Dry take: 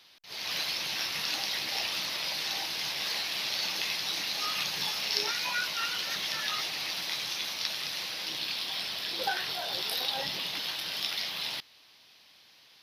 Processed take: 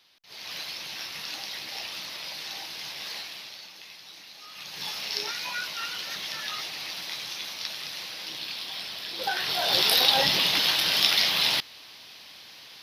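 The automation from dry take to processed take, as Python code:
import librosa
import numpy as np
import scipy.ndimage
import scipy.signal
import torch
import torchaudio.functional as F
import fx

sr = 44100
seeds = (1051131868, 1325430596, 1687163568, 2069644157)

y = fx.gain(x, sr, db=fx.line((3.19, -4.0), (3.69, -14.0), (4.48, -14.0), (4.88, -1.5), (9.13, -1.5), (9.76, 11.0)))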